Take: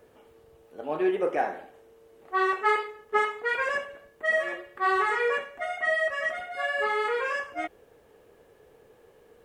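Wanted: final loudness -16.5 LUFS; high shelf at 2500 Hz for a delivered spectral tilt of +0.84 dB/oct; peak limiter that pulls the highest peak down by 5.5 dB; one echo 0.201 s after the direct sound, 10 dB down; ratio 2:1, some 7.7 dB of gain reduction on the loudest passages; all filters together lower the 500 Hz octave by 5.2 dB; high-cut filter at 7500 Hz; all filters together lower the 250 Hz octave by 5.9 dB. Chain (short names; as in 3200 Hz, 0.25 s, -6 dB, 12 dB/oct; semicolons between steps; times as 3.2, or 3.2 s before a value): LPF 7500 Hz; bell 250 Hz -7 dB; bell 500 Hz -5 dB; high shelf 2500 Hz +7.5 dB; compressor 2:1, threshold -34 dBFS; limiter -26.5 dBFS; echo 0.201 s -10 dB; gain +18.5 dB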